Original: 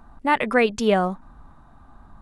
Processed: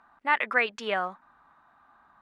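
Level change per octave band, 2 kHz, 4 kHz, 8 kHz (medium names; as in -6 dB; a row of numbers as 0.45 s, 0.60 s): -0.5 dB, -4.5 dB, -12.5 dB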